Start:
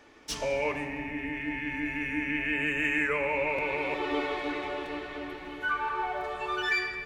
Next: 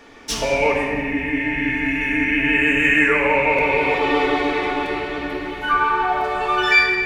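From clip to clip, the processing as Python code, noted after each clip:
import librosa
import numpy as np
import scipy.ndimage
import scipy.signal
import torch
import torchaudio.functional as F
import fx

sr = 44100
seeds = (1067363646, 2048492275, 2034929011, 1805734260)

y = fx.room_shoebox(x, sr, seeds[0], volume_m3=1200.0, walls='mixed', distance_m=1.7)
y = y * librosa.db_to_amplitude(9.0)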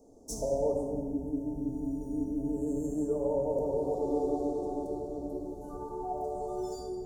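y = scipy.signal.sosfilt(scipy.signal.cheby1(3, 1.0, [650.0, 6800.0], 'bandstop', fs=sr, output='sos'), x)
y = y * librosa.db_to_amplitude(-8.5)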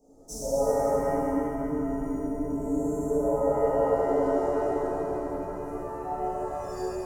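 y = fx.rev_shimmer(x, sr, seeds[1], rt60_s=2.3, semitones=7, shimmer_db=-8, drr_db=-10.0)
y = y * librosa.db_to_amplitude(-6.0)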